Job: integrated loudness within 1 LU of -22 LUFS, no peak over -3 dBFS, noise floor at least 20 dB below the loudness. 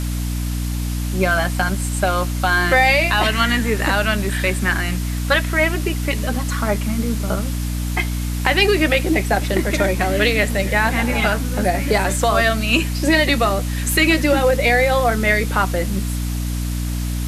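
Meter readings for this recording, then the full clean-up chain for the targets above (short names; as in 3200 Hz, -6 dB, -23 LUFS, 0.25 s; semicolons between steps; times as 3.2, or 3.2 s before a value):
hum 60 Hz; harmonics up to 300 Hz; hum level -20 dBFS; noise floor -23 dBFS; noise floor target -39 dBFS; loudness -18.5 LUFS; peak -2.0 dBFS; loudness target -22.0 LUFS
-> notches 60/120/180/240/300 Hz; noise print and reduce 16 dB; gain -3.5 dB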